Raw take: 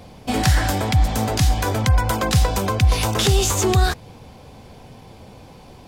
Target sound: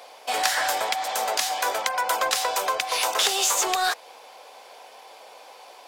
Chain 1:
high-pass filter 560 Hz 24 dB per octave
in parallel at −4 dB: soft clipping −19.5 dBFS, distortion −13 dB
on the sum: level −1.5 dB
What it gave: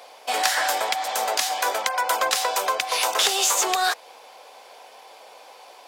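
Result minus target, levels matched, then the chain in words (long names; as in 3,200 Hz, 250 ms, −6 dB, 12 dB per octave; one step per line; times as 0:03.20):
soft clipping: distortion −7 dB
high-pass filter 560 Hz 24 dB per octave
in parallel at −4 dB: soft clipping −29 dBFS, distortion −6 dB
on the sum: level −1.5 dB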